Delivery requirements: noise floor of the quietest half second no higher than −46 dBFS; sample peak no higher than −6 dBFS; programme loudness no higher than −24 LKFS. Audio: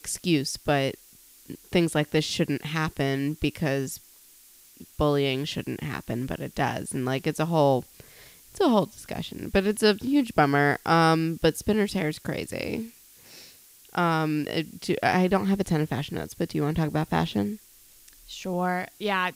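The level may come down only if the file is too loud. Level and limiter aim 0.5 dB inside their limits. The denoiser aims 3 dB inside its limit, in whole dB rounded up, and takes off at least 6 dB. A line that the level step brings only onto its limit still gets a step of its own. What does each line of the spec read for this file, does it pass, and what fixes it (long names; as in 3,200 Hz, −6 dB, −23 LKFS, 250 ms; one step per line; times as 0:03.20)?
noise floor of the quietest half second −54 dBFS: in spec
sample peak −7.0 dBFS: in spec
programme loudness −26.0 LKFS: in spec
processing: no processing needed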